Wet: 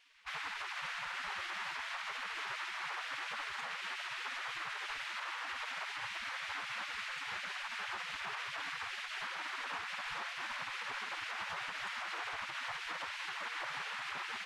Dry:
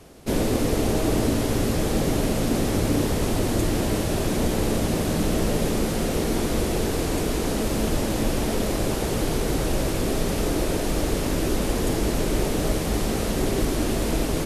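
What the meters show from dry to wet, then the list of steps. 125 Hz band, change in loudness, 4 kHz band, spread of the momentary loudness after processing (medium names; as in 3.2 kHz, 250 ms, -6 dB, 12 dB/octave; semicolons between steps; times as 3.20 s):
under -40 dB, -15.5 dB, -9.0 dB, 1 LU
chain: low-pass 2 kHz 12 dB/octave; spectral gate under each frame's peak -25 dB weak; peak limiter -34.5 dBFS, peak gain reduction 5.5 dB; trim +3 dB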